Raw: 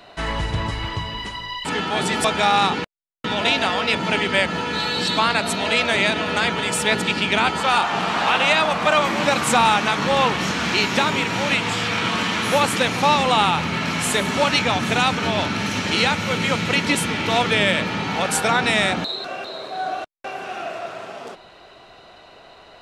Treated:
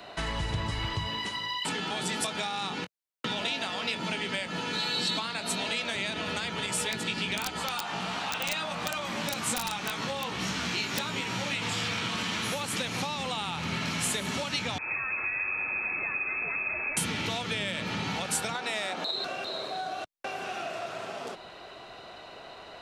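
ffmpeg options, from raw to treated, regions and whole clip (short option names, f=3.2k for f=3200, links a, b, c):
-filter_complex "[0:a]asettb=1/sr,asplit=3[a][b][c];[a]atrim=end=1.074[d];[b]atrim=start=1.07:end=5.95,asetpts=PTS-STARTPTS,afade=t=in:d=0.004:c=qsin,afade=t=out:st=4.876:d=0.004:c=qsin,highpass=130,asplit=2[e][f];[f]adelay=22,volume=-11dB[g];[e][g]amix=inputs=2:normalize=0,atrim=end_sample=215208[h];[c]atrim=start=5.946[i];[d][h]acrossfade=d=0.004:c1=hsin:c2=qsin[j];[j][i]acrossfade=d=0.004:c1=qsin:c2=hsin,asettb=1/sr,asplit=3[k][l][m];[k]atrim=end=6.664[n];[l]atrim=start=6.66:end=11.62,asetpts=PTS-STARTPTS,afade=t=in:d=0.004:c=qsin,afade=t=out:st=4.956:d=0.004:c=qsin,flanger=delay=15.5:depth=2.7:speed=1.3,aeval=exprs='(mod(2.82*val(0)+1,2)-1)/2.82':c=same[o];[m]atrim=start=11.616[p];[n][o]acrossfade=d=0.004:c1=hsin:c2=qsin[q];[q][p]acrossfade=d=0.004:c1=qsin:c2=hsin,asettb=1/sr,asplit=3[r][s][t];[r]atrim=end=14.784[u];[s]atrim=start=14.78:end=16.97,asetpts=PTS-STARTPTS,afade=t=in:d=0.004:c=qsin,afade=t=out:st=2.186:d=0.004:c=qsin,aeval=exprs='(tanh(22.4*val(0)+0.35)-tanh(0.35))/22.4':c=same,lowshelf=f=120:t=q:w=3:g=9.5,lowpass=f=2.2k:t=q:w=0.5098,lowpass=f=2.2k:t=q:w=0.6013,lowpass=f=2.2k:t=q:w=0.9,lowpass=f=2.2k:t=q:w=2.563,afreqshift=-2600[v];[t]atrim=start=16.966[w];[u][v]acrossfade=d=0.004:c1=hsin:c2=qsin[x];[x][w]acrossfade=d=0.004:c1=qsin:c2=hsin,asettb=1/sr,asplit=3[y][z][aa];[y]atrim=end=18.554[ab];[z]atrim=start=18.55:end=19.11,asetpts=PTS-STARTPTS,afade=t=in:d=0.004:c=qsin,afade=t=out:st=0.556:d=0.004:c=qsin,highpass=510,tiltshelf=f=1.3k:g=5.5,acontrast=84[ac];[aa]atrim=start=19.106[ad];[ab][ac]acrossfade=d=0.004:c1=hsin:c2=qsin[ae];[ae][ad]acrossfade=d=0.004:c1=qsin:c2=hsin,acompressor=threshold=-24dB:ratio=6,lowshelf=f=62:g=-7,acrossover=split=170|3000[af][ag][ah];[ag]acompressor=threshold=-36dB:ratio=2.5[ai];[af][ai][ah]amix=inputs=3:normalize=0"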